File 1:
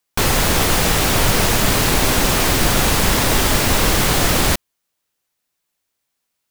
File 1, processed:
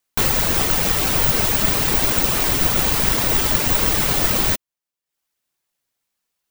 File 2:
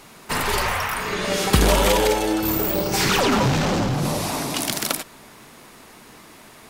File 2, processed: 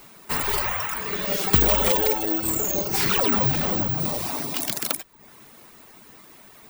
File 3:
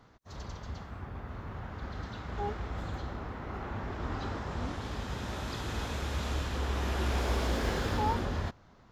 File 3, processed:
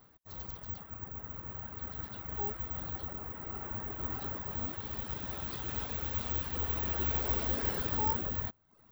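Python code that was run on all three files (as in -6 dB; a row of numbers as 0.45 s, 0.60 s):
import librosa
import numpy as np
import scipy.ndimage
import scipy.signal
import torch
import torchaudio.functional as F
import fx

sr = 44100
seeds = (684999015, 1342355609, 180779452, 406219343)

y = fx.dereverb_blind(x, sr, rt60_s=0.6)
y = (np.kron(y[::2], np.eye(2)[0]) * 2)[:len(y)]
y = y * 10.0 ** (-4.0 / 20.0)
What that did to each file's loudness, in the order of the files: -0.5 LU, -0.5 LU, +0.5 LU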